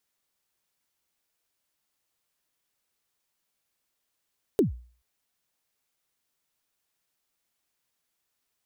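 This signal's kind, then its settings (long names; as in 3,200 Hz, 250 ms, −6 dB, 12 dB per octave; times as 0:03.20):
synth kick length 0.43 s, from 460 Hz, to 60 Hz, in 130 ms, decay 0.43 s, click on, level −14.5 dB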